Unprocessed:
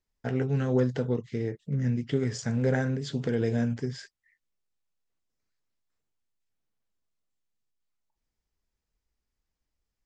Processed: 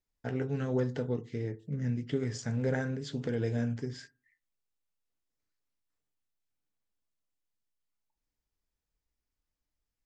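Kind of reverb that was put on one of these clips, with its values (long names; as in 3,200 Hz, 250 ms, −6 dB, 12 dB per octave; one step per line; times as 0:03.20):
feedback delay network reverb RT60 0.37 s, low-frequency decay 1.2×, high-frequency decay 0.3×, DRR 13 dB
level −4.5 dB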